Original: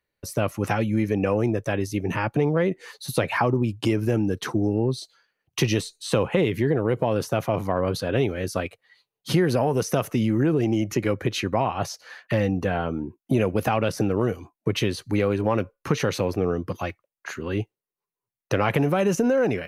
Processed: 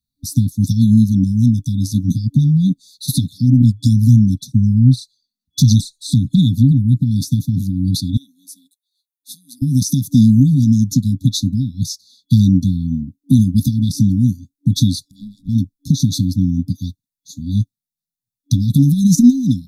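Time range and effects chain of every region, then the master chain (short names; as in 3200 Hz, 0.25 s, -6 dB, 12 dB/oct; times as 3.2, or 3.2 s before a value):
3.62–7.11 bell 120 Hz +3 dB 0.31 oct + envelope flanger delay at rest 4.4 ms, full sweep at -16.5 dBFS
8.17–9.62 HPF 470 Hz 24 dB/oct + bell 4600 Hz -13 dB 1.1 oct
15.05–15.49 compressor 3:1, threshold -29 dBFS + ring modulator 710 Hz
whole clip: FFT band-reject 290–3400 Hz; maximiser +16.5 dB; upward expander 1.5:1, over -30 dBFS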